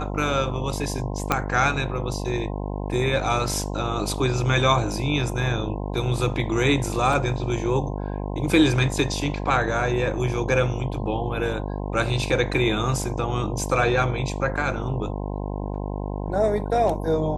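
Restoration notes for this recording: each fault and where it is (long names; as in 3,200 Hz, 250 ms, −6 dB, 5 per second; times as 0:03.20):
mains buzz 50 Hz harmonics 21 −29 dBFS
0:01.32: click −5 dBFS
0:07.13: drop-out 2.9 ms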